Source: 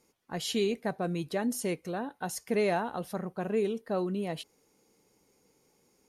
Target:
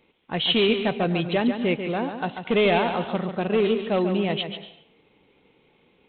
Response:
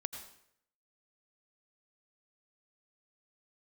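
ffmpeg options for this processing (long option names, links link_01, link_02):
-filter_complex "[0:a]asplit=3[link_01][link_02][link_03];[link_01]afade=type=out:start_time=1.49:duration=0.02[link_04];[link_02]aemphasis=mode=reproduction:type=50kf,afade=type=in:start_time=1.49:duration=0.02,afade=type=out:start_time=2.33:duration=0.02[link_05];[link_03]afade=type=in:start_time=2.33:duration=0.02[link_06];[link_04][link_05][link_06]amix=inputs=3:normalize=0,asoftclip=type=hard:threshold=-24dB,aexciter=amount=2.7:drive=5.7:freq=2300,asplit=2[link_07][link_08];[1:a]atrim=start_sample=2205,adelay=141[link_09];[link_08][link_09]afir=irnorm=-1:irlink=0,volume=-6.5dB[link_10];[link_07][link_10]amix=inputs=2:normalize=0,volume=8dB" -ar 8000 -c:a adpcm_g726 -b:a 32k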